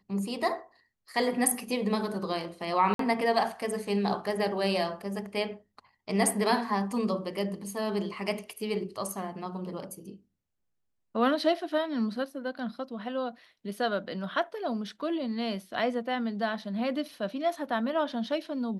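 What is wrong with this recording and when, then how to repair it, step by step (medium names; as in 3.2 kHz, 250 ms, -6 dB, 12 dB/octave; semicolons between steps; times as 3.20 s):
2.94–2.99 s: dropout 53 ms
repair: interpolate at 2.94 s, 53 ms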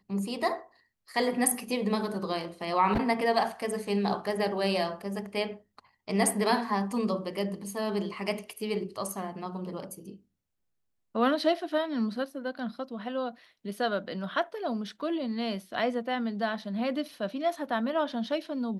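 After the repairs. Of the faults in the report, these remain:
nothing left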